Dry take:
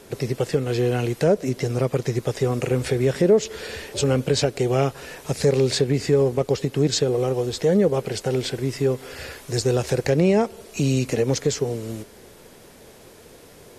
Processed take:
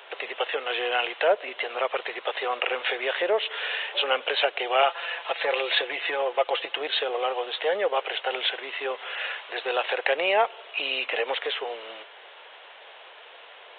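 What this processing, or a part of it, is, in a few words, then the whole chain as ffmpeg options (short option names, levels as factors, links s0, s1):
musical greeting card: -filter_complex "[0:a]asettb=1/sr,asplit=3[s0][s1][s2];[s0]atrim=end=4.824[s3];[s1]atrim=start=4.82:end=6.81,asetpts=PTS-STARTPTS,afade=t=in:d=0.004:c=qsin,afade=t=out:st=1.986:d=0.004:c=qsin,aecho=1:1:5.9:0.61,atrim=end_sample=87759[s4];[s2]atrim=start=6.806[s5];[s3][s4]acrossfade=d=0.004:c1=hsin:c2=qsin[s6];[s6][s5]acrossfade=d=0.004:c1=qsin:c2=hsin,aresample=8000,aresample=44100,highpass=f=690:w=0.5412,highpass=f=690:w=1.3066,equalizer=f=2900:t=o:w=0.26:g=6,volume=2.11"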